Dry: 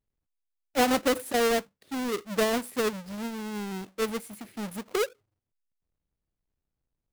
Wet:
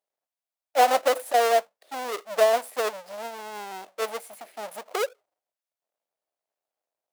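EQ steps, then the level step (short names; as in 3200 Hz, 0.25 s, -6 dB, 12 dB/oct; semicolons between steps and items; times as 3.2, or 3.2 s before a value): resonant high-pass 640 Hz, resonance Q 3.5; 0.0 dB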